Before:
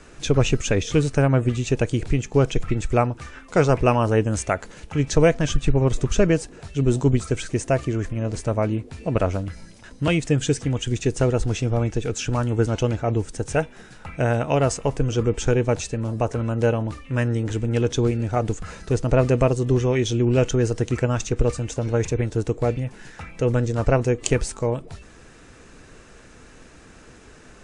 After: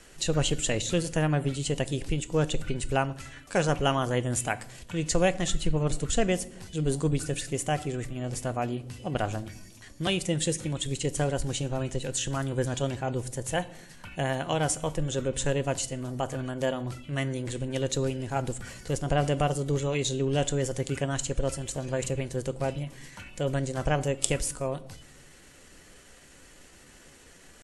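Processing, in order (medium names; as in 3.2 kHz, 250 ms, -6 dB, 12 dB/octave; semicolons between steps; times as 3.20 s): treble shelf 2.3 kHz +10 dB; pitch shift +2 st; on a send: reverberation RT60 0.80 s, pre-delay 3 ms, DRR 14.5 dB; on the sum: trim -8.5 dB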